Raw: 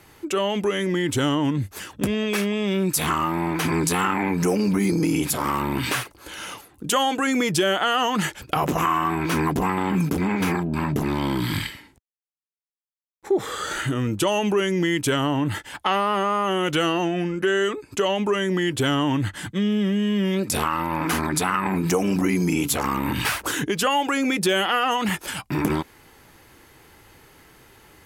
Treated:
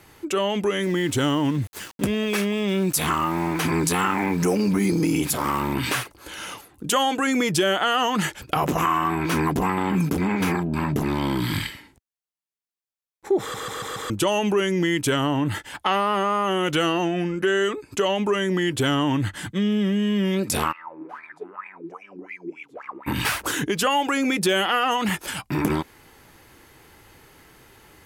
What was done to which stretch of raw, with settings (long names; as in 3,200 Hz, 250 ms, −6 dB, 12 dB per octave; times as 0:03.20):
0:00.83–0:05.74: centre clipping without the shift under −38 dBFS
0:13.40: stutter in place 0.14 s, 5 plays
0:20.71–0:23.06: LFO wah 1.7 Hz → 4.8 Hz 330–2,400 Hz, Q 11